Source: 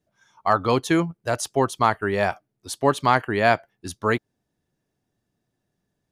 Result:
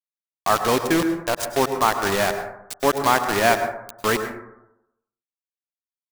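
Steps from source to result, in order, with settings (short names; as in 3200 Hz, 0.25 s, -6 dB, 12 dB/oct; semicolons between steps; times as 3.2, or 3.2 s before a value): bell 140 Hz -7.5 dB 0.45 oct; bit-crush 4-bit; plate-style reverb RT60 0.83 s, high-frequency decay 0.3×, pre-delay 90 ms, DRR 8 dB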